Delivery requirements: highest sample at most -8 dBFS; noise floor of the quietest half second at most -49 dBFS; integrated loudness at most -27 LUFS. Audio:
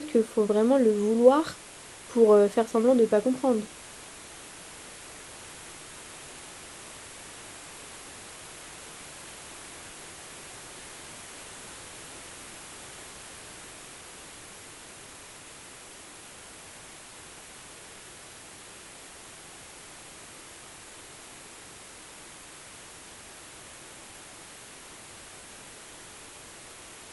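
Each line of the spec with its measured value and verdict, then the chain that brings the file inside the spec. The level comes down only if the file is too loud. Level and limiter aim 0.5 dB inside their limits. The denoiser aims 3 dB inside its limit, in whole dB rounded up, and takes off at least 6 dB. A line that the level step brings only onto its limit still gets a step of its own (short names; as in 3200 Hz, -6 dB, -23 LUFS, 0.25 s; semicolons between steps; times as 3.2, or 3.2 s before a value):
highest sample -5.5 dBFS: fail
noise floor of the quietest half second -47 dBFS: fail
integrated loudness -23.0 LUFS: fail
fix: gain -4.5 dB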